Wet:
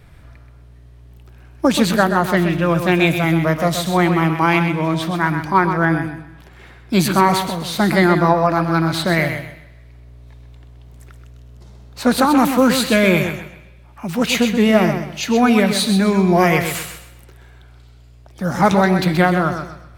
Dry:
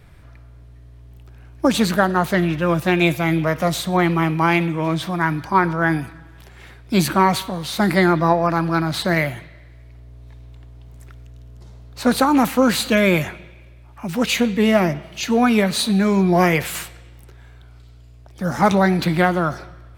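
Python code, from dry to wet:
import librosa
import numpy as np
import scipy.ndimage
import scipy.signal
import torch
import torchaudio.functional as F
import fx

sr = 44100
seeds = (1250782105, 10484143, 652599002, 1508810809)

y = fx.high_shelf(x, sr, hz=3700.0, db=-7.0, at=(5.85, 6.93))
y = fx.echo_feedback(y, sr, ms=128, feedback_pct=28, wet_db=-8.0)
y = F.gain(torch.from_numpy(y), 1.5).numpy()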